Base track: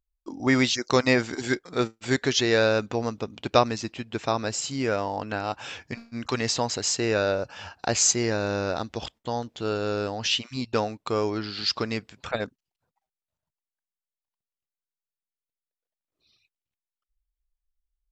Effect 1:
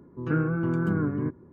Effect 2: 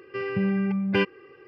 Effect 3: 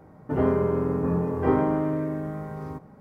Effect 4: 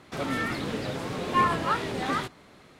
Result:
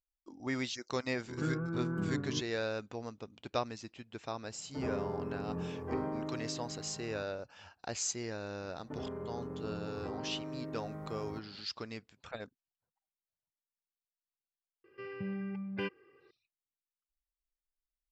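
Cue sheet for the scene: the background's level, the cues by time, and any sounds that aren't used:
base track −14.5 dB
0:01.11: mix in 1 −9.5 dB
0:04.45: mix in 3 −14 dB
0:08.61: mix in 3 −9 dB + downward compressor 4 to 1, threshold −30 dBFS
0:14.84: mix in 2 −14 dB
not used: 4

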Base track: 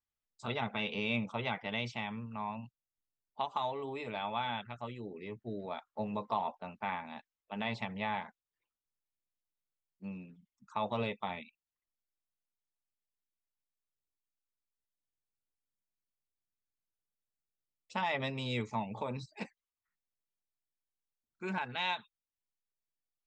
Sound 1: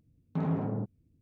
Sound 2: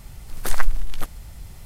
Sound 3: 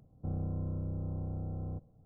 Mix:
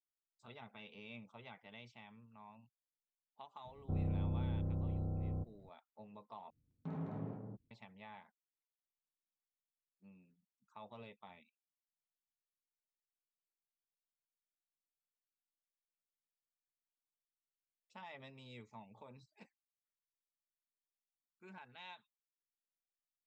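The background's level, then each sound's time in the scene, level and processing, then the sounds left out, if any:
base track −18.5 dB
0:03.65: mix in 3 −1 dB
0:06.50: overwrite with 1 −13 dB + single-tap delay 211 ms −3.5 dB
not used: 2

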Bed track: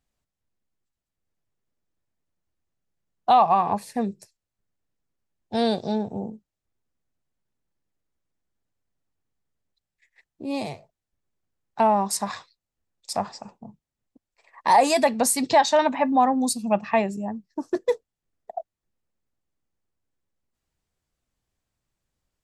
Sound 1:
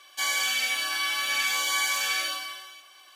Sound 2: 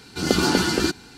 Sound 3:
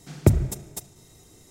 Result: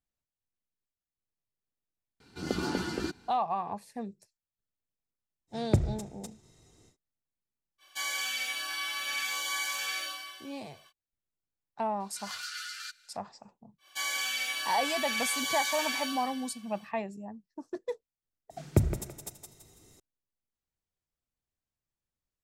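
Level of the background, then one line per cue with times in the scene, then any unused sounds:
bed track −12.5 dB
0:02.20: mix in 2 −11.5 dB + high-shelf EQ 2,600 Hz −6.5 dB
0:05.47: mix in 3 −8 dB, fades 0.10 s + low-pass filter 7,800 Hz
0:07.78: mix in 1 −7 dB, fades 0.05 s
0:12.00: mix in 2 −14.5 dB + linear-phase brick-wall high-pass 1,200 Hz
0:13.78: mix in 1 −6 dB, fades 0.10 s
0:18.50: mix in 3 −7 dB + feedback echo with a high-pass in the loop 166 ms, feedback 37%, level −6.5 dB

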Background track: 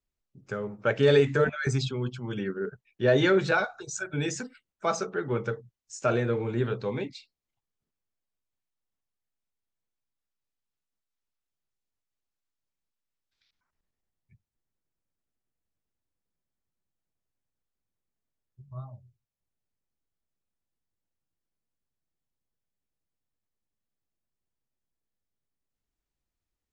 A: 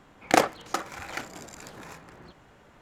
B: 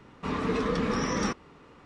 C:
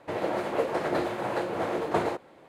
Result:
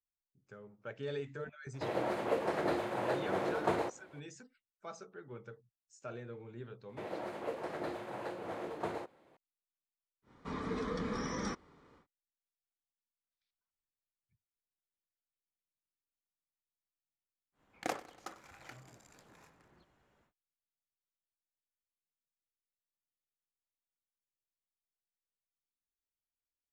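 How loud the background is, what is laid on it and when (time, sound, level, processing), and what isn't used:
background track −19.5 dB
0:01.73: mix in C −5.5 dB, fades 0.02 s
0:06.89: mix in C −12 dB
0:10.22: mix in B −9.5 dB, fades 0.10 s + notch filter 2,700 Hz, Q 5.2
0:17.52: mix in A −17.5 dB, fades 0.10 s + repeating echo 96 ms, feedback 54%, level −17.5 dB

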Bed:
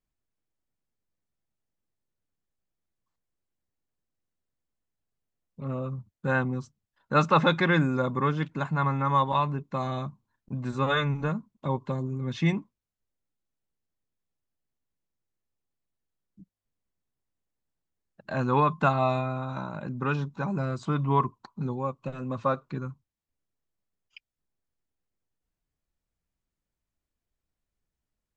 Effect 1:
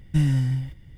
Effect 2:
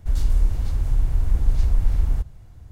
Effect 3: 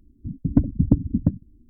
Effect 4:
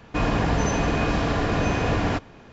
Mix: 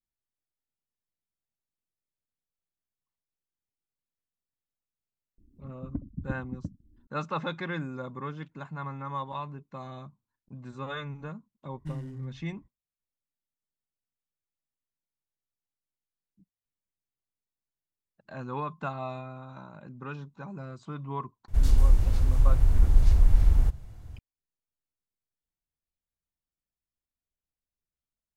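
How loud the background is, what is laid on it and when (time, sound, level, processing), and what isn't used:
bed −11 dB
0:05.38: mix in 3 −17 dB + upward compression, threshold −31 dBFS
0:11.71: mix in 1 −17.5 dB + adaptive Wiener filter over 15 samples
0:21.48: mix in 2 −0.5 dB
not used: 4

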